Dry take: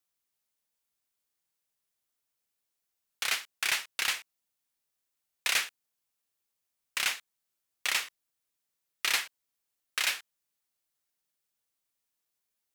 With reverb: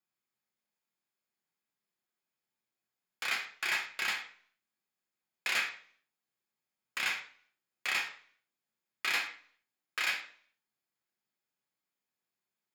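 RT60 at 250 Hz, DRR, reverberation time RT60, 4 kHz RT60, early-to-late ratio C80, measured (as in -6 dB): 0.60 s, 0.0 dB, 0.50 s, 0.45 s, 13.0 dB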